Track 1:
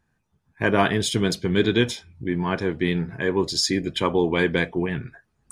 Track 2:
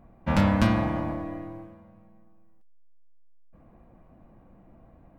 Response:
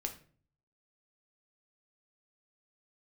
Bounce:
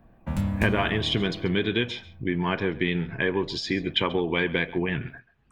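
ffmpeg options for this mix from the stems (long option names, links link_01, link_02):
-filter_complex "[0:a]acompressor=threshold=-22dB:ratio=6,lowpass=frequency=2900:width_type=q:width=2.1,volume=0.5dB,asplit=2[link_01][link_02];[link_02]volume=-19dB[link_03];[1:a]highshelf=frequency=3300:gain=-11.5,acrossover=split=200|3000[link_04][link_05][link_06];[link_05]acompressor=threshold=-37dB:ratio=6[link_07];[link_04][link_07][link_06]amix=inputs=3:normalize=0,aexciter=amount=4.2:drive=6:freq=7100,volume=-1.5dB[link_08];[link_03]aecho=0:1:136:1[link_09];[link_01][link_08][link_09]amix=inputs=3:normalize=0"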